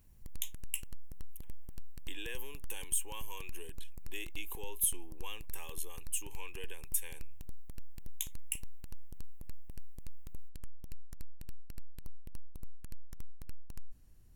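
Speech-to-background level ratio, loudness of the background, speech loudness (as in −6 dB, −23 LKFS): 16.0 dB, −56.0 LKFS, −40.0 LKFS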